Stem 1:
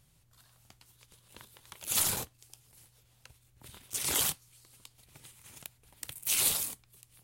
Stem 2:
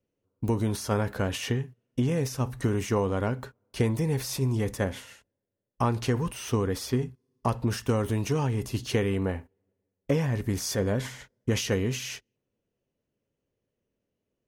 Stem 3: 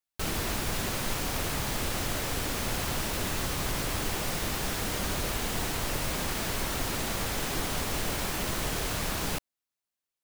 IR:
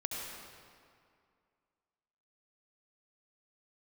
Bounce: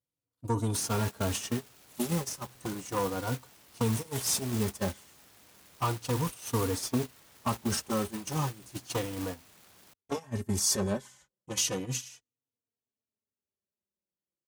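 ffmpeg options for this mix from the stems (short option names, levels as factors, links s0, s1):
-filter_complex "[0:a]volume=0.282[s0];[1:a]aeval=exprs='0.211*sin(PI/2*2*val(0)/0.211)':c=same,equalizer=f=125:t=o:w=1:g=-3,equalizer=f=500:t=o:w=1:g=-4,equalizer=f=1000:t=o:w=1:g=5,equalizer=f=2000:t=o:w=1:g=-7,equalizer=f=8000:t=o:w=1:g=9,asplit=2[s1][s2];[s2]adelay=3.6,afreqshift=-0.34[s3];[s1][s3]amix=inputs=2:normalize=1,volume=0.531[s4];[2:a]aeval=exprs='(mod(18.8*val(0)+1,2)-1)/18.8':c=same,adelay=550,volume=0.355[s5];[s0][s4][s5]amix=inputs=3:normalize=0,agate=range=0.141:threshold=0.0355:ratio=16:detection=peak,highpass=79"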